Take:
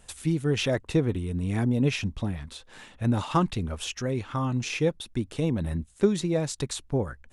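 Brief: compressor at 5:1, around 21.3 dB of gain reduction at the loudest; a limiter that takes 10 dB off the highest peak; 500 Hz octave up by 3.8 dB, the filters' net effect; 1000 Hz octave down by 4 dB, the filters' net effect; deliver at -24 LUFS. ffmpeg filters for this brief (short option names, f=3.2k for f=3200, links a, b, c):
-af "equalizer=f=500:t=o:g=6,equalizer=f=1k:t=o:g=-7,acompressor=threshold=-38dB:ratio=5,volume=20dB,alimiter=limit=-14.5dB:level=0:latency=1"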